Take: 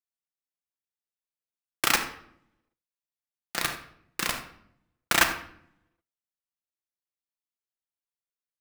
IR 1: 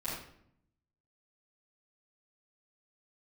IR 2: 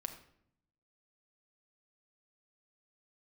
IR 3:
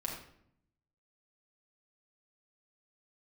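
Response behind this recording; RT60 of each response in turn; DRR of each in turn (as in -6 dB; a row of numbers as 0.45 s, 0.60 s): 2; 0.70 s, 0.70 s, 0.70 s; -12.5 dB, 5.5 dB, -2.5 dB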